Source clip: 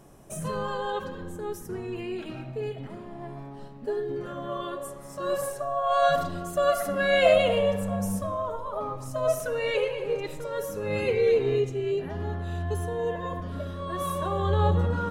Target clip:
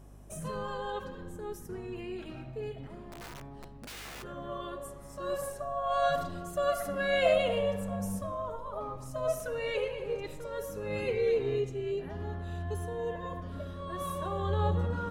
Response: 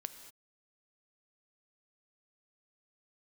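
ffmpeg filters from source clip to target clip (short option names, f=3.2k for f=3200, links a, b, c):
-filter_complex "[0:a]asplit=3[a][b][c];[a]afade=t=out:st=3.09:d=0.02[d];[b]aeval=exprs='(mod(47.3*val(0)+1,2)-1)/47.3':c=same,afade=t=in:st=3.09:d=0.02,afade=t=out:st=4.22:d=0.02[e];[c]afade=t=in:st=4.22:d=0.02[f];[d][e][f]amix=inputs=3:normalize=0,aeval=exprs='val(0)+0.00562*(sin(2*PI*50*n/s)+sin(2*PI*2*50*n/s)/2+sin(2*PI*3*50*n/s)/3+sin(2*PI*4*50*n/s)/4+sin(2*PI*5*50*n/s)/5)':c=same,volume=-6dB"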